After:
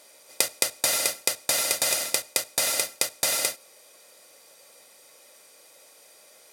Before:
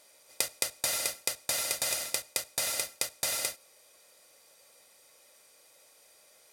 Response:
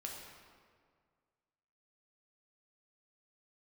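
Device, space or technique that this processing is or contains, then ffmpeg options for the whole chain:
filter by subtraction: -filter_complex "[0:a]asplit=2[a][b];[b]lowpass=260,volume=-1[c];[a][c]amix=inputs=2:normalize=0,volume=6.5dB"

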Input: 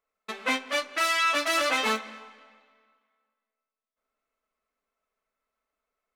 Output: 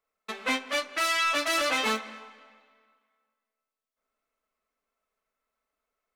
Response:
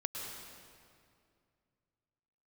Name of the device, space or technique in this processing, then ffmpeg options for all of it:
one-band saturation: -filter_complex "[0:a]acrossover=split=460|2400[a][b][c];[b]asoftclip=type=tanh:threshold=-23.5dB[d];[a][d][c]amix=inputs=3:normalize=0"

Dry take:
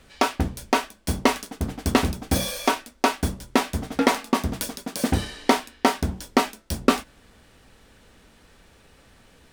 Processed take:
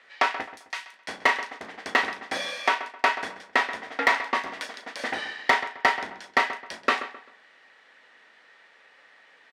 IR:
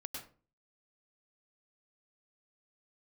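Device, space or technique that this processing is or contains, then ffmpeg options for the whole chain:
megaphone: -filter_complex "[0:a]asettb=1/sr,asplit=3[a][b][c];[a]atrim=end=0.434[d];[b]atrim=start=0.43:end=0.93,asetpts=PTS-STARTPTS,afade=t=in:d=0.004:c=qsin,afade=t=out:st=0.496:d=0.004:c=qsin,aderivative[e];[c]atrim=start=0.926[f];[d][e]acrossfade=d=0.004:c1=hsin:c2=qsin[g];[g][f]acrossfade=d=0.004:c1=qsin:c2=hsin,highpass=690,lowpass=3.7k,equalizer=f=1.9k:t=o:w=0.27:g=11,asoftclip=type=hard:threshold=-10dB,asplit=2[h][i];[i]adelay=36,volume=-11.5dB[j];[h][j]amix=inputs=2:normalize=0,asplit=2[k][l];[l]adelay=131,lowpass=f=2.9k:p=1,volume=-12dB,asplit=2[m][n];[n]adelay=131,lowpass=f=2.9k:p=1,volume=0.33,asplit=2[o][p];[p]adelay=131,lowpass=f=2.9k:p=1,volume=0.33[q];[k][m][o][q]amix=inputs=4:normalize=0"

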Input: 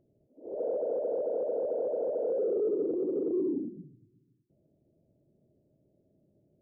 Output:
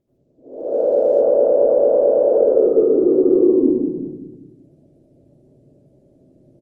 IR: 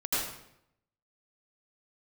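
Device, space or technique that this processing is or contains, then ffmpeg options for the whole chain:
speakerphone in a meeting room: -filter_complex "[0:a]asplit=2[a][b];[b]adelay=191,lowpass=f=890:p=1,volume=-6dB,asplit=2[c][d];[d]adelay=191,lowpass=f=890:p=1,volume=0.43,asplit=2[e][f];[f]adelay=191,lowpass=f=890:p=1,volume=0.43,asplit=2[g][h];[h]adelay=191,lowpass=f=890:p=1,volume=0.43,asplit=2[i][j];[j]adelay=191,lowpass=f=890:p=1,volume=0.43[k];[a][c][e][g][i][k]amix=inputs=6:normalize=0[l];[1:a]atrim=start_sample=2205[m];[l][m]afir=irnorm=-1:irlink=0,dynaudnorm=f=300:g=5:m=7dB" -ar 48000 -c:a libopus -b:a 24k

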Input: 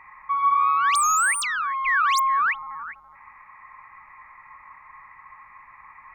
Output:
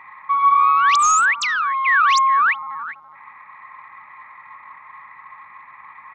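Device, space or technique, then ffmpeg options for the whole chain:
Bluetooth headset: -filter_complex "[0:a]asettb=1/sr,asplit=3[a][b][c];[a]atrim=end=1.684[d];[b]atrim=start=1.68:end=2.16,asetpts=PTS-STARTPTS,afade=t=in:d=0.004:c=qsin,afade=t=out:st=0.476:d=0.004:c=qsin,highpass=f=200:w=0.5412,highpass=f=200:w=1.3066[e];[c]atrim=start=2.156[f];[d][e]acrossfade=d=0.004:c1=hsin:c2=qsin[g];[g][f]acrossfade=d=0.004:c1=qsin:c2=hsin,highpass=140,aresample=16000,aresample=44100,volume=5.5dB" -ar 32000 -c:a sbc -b:a 64k

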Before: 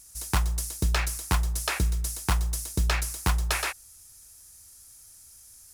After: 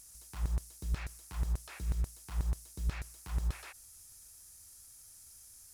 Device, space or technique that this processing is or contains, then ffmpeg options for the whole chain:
de-esser from a sidechain: -filter_complex "[0:a]asplit=2[a][b];[b]highpass=f=5.9k:p=1,apad=whole_len=253125[c];[a][c]sidechaincompress=threshold=-51dB:ratio=8:attack=0.73:release=38"

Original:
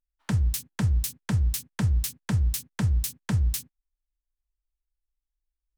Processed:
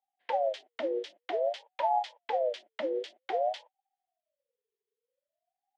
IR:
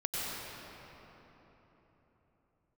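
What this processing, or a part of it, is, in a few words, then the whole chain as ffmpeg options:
voice changer toy: -af "aeval=exprs='val(0)*sin(2*PI*600*n/s+600*0.3/0.52*sin(2*PI*0.52*n/s))':c=same,highpass=490,equalizer=f=530:t=q:w=4:g=3,equalizer=f=880:t=q:w=4:g=4,equalizer=f=1.2k:t=q:w=4:g=-5,equalizer=f=1.9k:t=q:w=4:g=7,equalizer=f=3.2k:t=q:w=4:g=8,lowpass=f=4.1k:w=0.5412,lowpass=f=4.1k:w=1.3066,volume=-4dB"

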